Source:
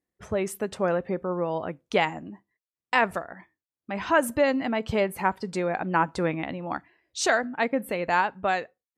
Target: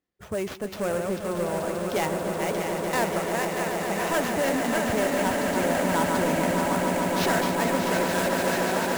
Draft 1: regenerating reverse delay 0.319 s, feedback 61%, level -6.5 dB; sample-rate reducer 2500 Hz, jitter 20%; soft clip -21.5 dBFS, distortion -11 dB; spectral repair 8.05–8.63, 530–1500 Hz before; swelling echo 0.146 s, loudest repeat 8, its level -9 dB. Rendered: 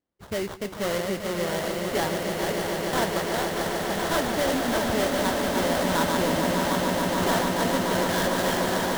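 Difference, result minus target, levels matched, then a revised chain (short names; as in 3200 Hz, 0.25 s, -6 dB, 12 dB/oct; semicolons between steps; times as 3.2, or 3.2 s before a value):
sample-rate reducer: distortion +11 dB
regenerating reverse delay 0.319 s, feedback 61%, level -6.5 dB; sample-rate reducer 9000 Hz, jitter 20%; soft clip -21.5 dBFS, distortion -11 dB; spectral repair 8.05–8.63, 530–1500 Hz before; swelling echo 0.146 s, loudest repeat 8, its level -9 dB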